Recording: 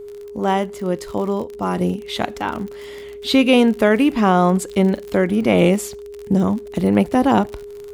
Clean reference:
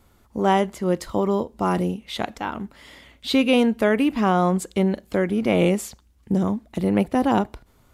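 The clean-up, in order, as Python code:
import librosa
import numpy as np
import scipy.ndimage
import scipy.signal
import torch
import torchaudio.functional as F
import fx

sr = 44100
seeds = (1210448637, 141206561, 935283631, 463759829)

y = fx.fix_declick_ar(x, sr, threshold=6.5)
y = fx.notch(y, sr, hz=410.0, q=30.0)
y = fx.gain(y, sr, db=fx.steps((0.0, 0.0), (1.81, -4.5)))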